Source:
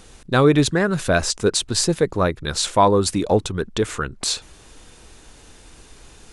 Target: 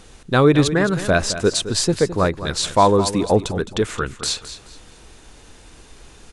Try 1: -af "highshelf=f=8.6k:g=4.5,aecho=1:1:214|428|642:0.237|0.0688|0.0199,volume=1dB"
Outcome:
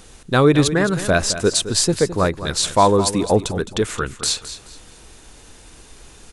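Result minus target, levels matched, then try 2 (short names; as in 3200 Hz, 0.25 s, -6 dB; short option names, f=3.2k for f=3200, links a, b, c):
8000 Hz band +3.5 dB
-af "highshelf=f=8.6k:g=-5,aecho=1:1:214|428|642:0.237|0.0688|0.0199,volume=1dB"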